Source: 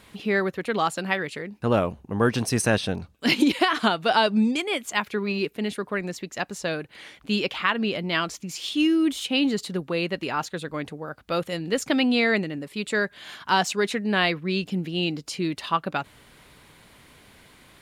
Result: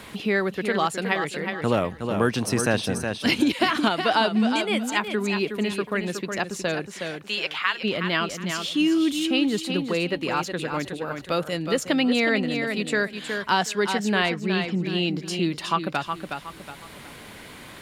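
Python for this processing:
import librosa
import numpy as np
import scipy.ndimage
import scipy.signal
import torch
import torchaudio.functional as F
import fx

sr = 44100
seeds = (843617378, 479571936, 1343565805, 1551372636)

p1 = fx.highpass(x, sr, hz=fx.line((6.9, 450.0), (7.83, 1400.0)), slope=12, at=(6.9, 7.83), fade=0.02)
p2 = fx.air_absorb(p1, sr, metres=80.0, at=(14.26, 14.87))
p3 = p2 + fx.echo_feedback(p2, sr, ms=366, feedback_pct=25, wet_db=-8, dry=0)
y = fx.band_squash(p3, sr, depth_pct=40)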